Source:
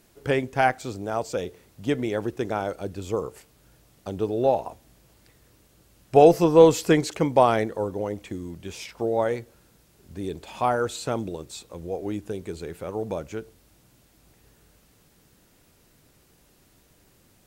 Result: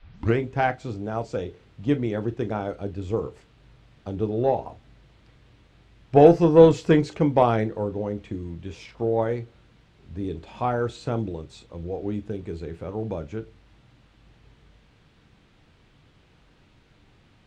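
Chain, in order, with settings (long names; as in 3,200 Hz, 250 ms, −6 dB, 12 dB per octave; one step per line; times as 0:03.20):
turntable start at the beginning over 0.37 s
low-shelf EQ 270 Hz +9 dB
harmonic generator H 7 −32 dB, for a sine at 1.5 dBFS
noise in a band 450–4,000 Hz −63 dBFS
high-frequency loss of the air 110 metres
convolution reverb, pre-delay 3 ms, DRR 10 dB
level −2 dB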